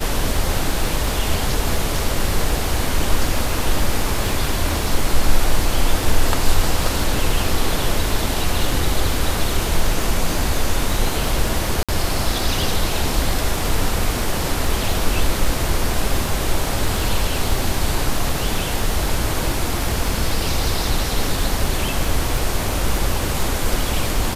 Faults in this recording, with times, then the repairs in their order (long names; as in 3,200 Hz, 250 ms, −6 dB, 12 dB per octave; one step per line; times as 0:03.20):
surface crackle 32 per second −24 dBFS
0:11.83–0:11.89: drop-out 56 ms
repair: click removal
repair the gap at 0:11.83, 56 ms